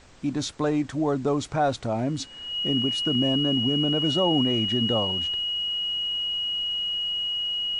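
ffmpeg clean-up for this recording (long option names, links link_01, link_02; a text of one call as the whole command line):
ffmpeg -i in.wav -af "bandreject=frequency=2900:width=30,agate=range=-21dB:threshold=-29dB" out.wav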